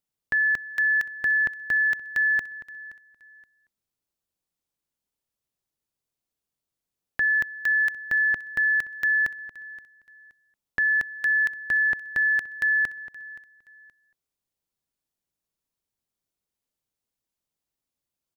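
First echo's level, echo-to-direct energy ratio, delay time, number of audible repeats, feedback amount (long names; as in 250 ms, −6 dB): −19.5 dB, −19.0 dB, 523 ms, 2, 30%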